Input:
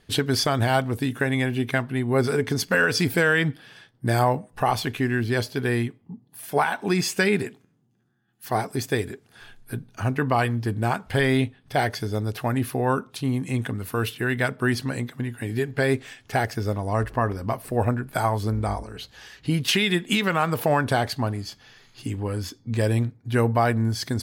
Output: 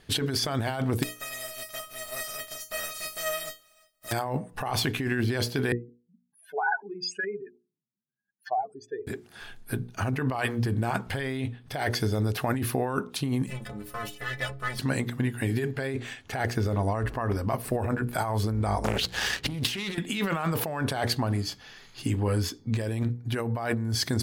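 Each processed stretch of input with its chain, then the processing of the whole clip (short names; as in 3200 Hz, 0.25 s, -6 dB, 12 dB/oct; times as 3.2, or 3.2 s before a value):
1.02–4.11 spectral contrast lowered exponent 0.26 + bell 330 Hz +5 dB 2.6 oct + resonator 630 Hz, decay 0.22 s, mix 100%
5.72–9.07 spectral contrast raised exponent 3.4 + BPF 790–3700 Hz
13.46–14.79 minimum comb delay 1.6 ms + metallic resonator 63 Hz, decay 0.42 s, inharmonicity 0.03
15.87–17.12 high shelf 8600 Hz -6 dB + notch 5200 Hz, Q 11
18.84–19.98 sample leveller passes 2 + negative-ratio compressor -30 dBFS + Doppler distortion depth 0.64 ms
whole clip: notches 60/120/180/240/300/360/420/480 Hz; negative-ratio compressor -27 dBFS, ratio -1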